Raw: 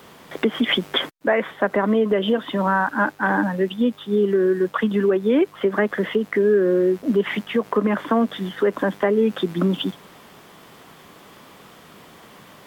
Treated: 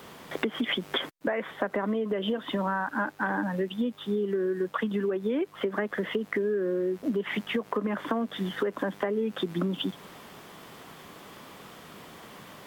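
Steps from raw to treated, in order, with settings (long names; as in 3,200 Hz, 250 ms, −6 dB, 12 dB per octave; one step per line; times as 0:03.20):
downward compressor 5 to 1, threshold −25 dBFS, peak gain reduction 10.5 dB
level −1 dB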